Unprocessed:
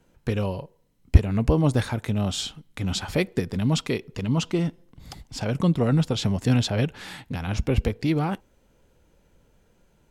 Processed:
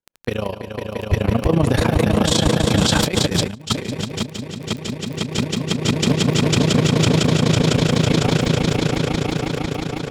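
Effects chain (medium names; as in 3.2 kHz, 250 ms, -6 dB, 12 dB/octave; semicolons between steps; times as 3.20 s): Doppler pass-by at 3.54 s, 9 m/s, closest 2 m; dynamic bell 140 Hz, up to +5 dB, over -43 dBFS, Q 0.79; gate -52 dBFS, range -31 dB; bass shelf 250 Hz -10 dB; on a send: echo with a slow build-up 168 ms, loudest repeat 5, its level -4.5 dB; on the sum: AM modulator 28 Hz, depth 75%; compressor with a negative ratio -41 dBFS, ratio -0.5; crackle 11 per s -51 dBFS; loudness maximiser +32 dB; trim -5 dB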